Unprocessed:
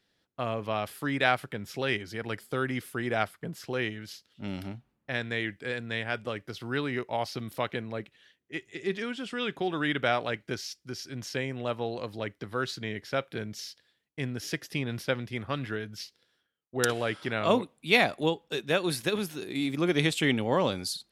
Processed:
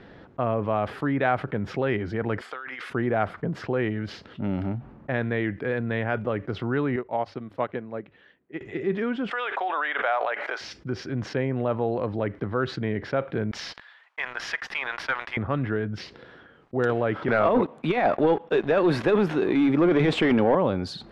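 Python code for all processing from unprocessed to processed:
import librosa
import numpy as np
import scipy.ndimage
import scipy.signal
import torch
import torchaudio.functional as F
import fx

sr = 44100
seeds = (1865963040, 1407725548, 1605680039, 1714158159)

y = fx.chain(x, sr, fx.highpass(hz=1300.0, slope=12),
    fx.peak_eq(hz=13000.0, db=-7.0, octaves=0.43),
    fx.over_compress(threshold_db=-48.0, ratio=-1.0), at=(2.41, 2.9))
y = fx.chain(y, sr, fx.peak_eq(hz=94.0, db=-7.5, octaves=0.96),
    fx.hum_notches(base_hz=50, count=2),
    fx.upward_expand(threshold_db=-44.0, expansion=2.5), at=(6.96, 8.61))
y = fx.chain(y, sr, fx.highpass(hz=660.0, slope=24),
    fx.pre_swell(db_per_s=39.0), at=(9.31, 10.61))
y = fx.chain(y, sr, fx.highpass(hz=930.0, slope=24),
    fx.leveller(passes=2), at=(13.51, 15.37))
y = fx.chain(y, sr, fx.highpass(hz=330.0, slope=6),
    fx.over_compress(threshold_db=-27.0, ratio=-0.5),
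    fx.leveller(passes=3), at=(17.28, 20.55))
y = scipy.signal.sosfilt(scipy.signal.butter(2, 1300.0, 'lowpass', fs=sr, output='sos'), y)
y = fx.env_flatten(y, sr, amount_pct=50)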